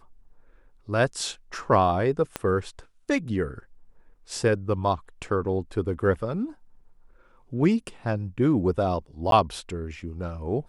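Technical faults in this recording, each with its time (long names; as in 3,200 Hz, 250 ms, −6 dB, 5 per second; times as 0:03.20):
0:02.36: click −13 dBFS
0:09.31–0:09.32: drop-out 12 ms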